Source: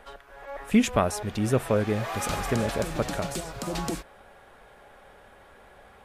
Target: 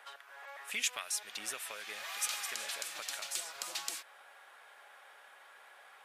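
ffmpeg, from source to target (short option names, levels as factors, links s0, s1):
-filter_complex "[0:a]highpass=1100,acrossover=split=2200[s0][s1];[s0]acompressor=threshold=0.00398:ratio=5[s2];[s2][s1]amix=inputs=2:normalize=0"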